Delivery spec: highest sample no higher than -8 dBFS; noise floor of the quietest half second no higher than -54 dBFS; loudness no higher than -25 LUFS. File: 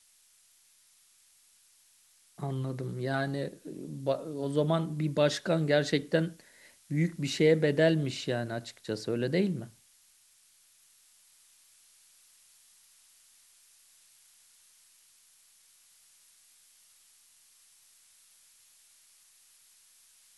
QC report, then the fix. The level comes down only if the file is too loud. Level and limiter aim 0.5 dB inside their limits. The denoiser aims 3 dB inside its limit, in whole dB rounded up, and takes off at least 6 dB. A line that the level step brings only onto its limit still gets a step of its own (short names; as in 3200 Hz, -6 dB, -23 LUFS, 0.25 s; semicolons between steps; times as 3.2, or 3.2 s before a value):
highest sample -11.5 dBFS: OK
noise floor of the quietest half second -64 dBFS: OK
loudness -30.0 LUFS: OK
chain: none